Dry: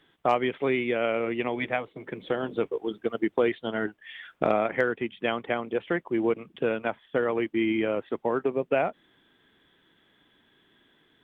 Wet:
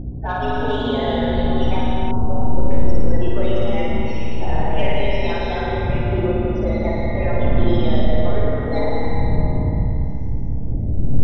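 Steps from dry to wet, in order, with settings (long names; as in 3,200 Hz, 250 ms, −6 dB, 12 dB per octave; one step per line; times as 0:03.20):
partials spread apart or drawn together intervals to 120%
wind on the microphone 100 Hz −25 dBFS
0:04.72–0:05.41: low-shelf EQ 280 Hz −6.5 dB
in parallel at +1 dB: downward compressor, threshold −31 dBFS, peak gain reduction 21.5 dB
on the sum: spectral peaks only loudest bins 32
soft clipping −14 dBFS, distortion −11 dB
on a send: flutter between parallel walls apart 9.4 metres, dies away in 1.4 s
on the sum: comb and all-pass reverb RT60 3.3 s, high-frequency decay 0.65×, pre-delay 100 ms, DRR −1.5 dB
mains hum 60 Hz, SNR 17 dB
0:02.11–0:02.71: linear-phase brick-wall low-pass 1,500 Hz
level −2.5 dB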